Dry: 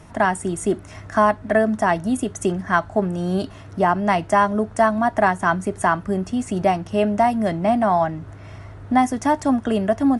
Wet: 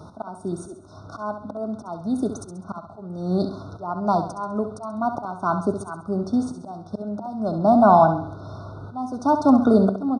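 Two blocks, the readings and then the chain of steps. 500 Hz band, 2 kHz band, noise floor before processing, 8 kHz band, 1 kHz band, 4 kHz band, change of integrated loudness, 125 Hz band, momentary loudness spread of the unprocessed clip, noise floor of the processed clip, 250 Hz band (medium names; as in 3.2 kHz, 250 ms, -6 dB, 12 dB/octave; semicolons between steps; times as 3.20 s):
-3.0 dB, -15.0 dB, -40 dBFS, -11.0 dB, -3.5 dB, -9.5 dB, -2.0 dB, -2.0 dB, 7 LU, -44 dBFS, -1.0 dB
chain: Savitzky-Golay filter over 15 samples; slow attack 690 ms; high-pass 96 Hz; FFT band-reject 1.5–3.5 kHz; feedback delay 67 ms, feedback 44%, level -9 dB; trim +4.5 dB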